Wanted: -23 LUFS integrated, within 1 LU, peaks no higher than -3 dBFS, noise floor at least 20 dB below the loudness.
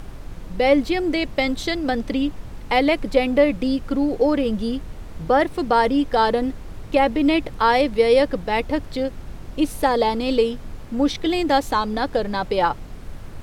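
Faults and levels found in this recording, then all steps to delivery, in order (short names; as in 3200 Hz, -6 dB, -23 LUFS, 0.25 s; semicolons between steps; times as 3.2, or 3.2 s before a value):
noise floor -37 dBFS; noise floor target -41 dBFS; loudness -21.0 LUFS; peak -4.5 dBFS; loudness target -23.0 LUFS
-> noise print and reduce 6 dB; gain -2 dB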